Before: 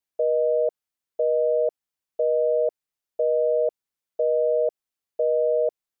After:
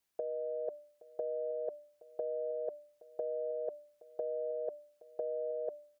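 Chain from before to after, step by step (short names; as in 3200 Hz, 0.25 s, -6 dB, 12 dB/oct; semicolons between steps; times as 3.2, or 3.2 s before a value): de-hum 295.2 Hz, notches 2; limiter -21 dBFS, peak gain reduction 6 dB; negative-ratio compressor -32 dBFS, ratio -0.5; on a send: echo 0.821 s -20 dB; on the sum: gain -2.5 dB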